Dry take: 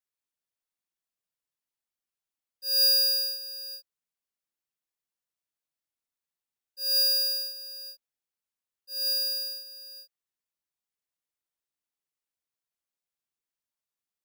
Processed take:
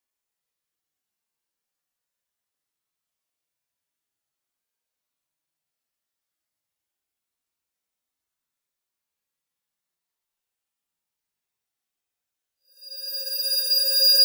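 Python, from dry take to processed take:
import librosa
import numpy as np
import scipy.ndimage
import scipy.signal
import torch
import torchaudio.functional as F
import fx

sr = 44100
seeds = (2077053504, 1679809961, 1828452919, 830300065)

y = fx.paulstretch(x, sr, seeds[0], factor=7.0, window_s=0.1, from_s=4.93)
y = y * librosa.db_to_amplitude(5.5)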